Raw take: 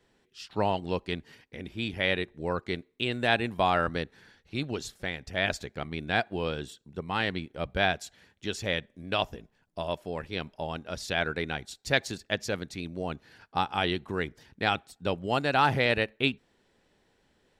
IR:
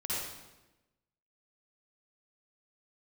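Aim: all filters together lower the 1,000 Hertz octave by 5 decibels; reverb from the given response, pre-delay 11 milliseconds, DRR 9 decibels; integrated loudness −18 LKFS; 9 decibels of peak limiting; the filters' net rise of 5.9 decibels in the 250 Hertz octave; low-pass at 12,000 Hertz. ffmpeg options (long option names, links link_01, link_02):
-filter_complex "[0:a]lowpass=12000,equalizer=frequency=250:width_type=o:gain=8,equalizer=frequency=1000:width_type=o:gain=-8,alimiter=limit=-17.5dB:level=0:latency=1,asplit=2[link_01][link_02];[1:a]atrim=start_sample=2205,adelay=11[link_03];[link_02][link_03]afir=irnorm=-1:irlink=0,volume=-14dB[link_04];[link_01][link_04]amix=inputs=2:normalize=0,volume=13.5dB"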